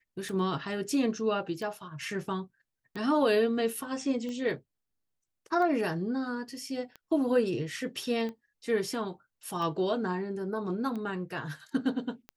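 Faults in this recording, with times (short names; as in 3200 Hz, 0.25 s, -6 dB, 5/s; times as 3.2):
tick 45 rpm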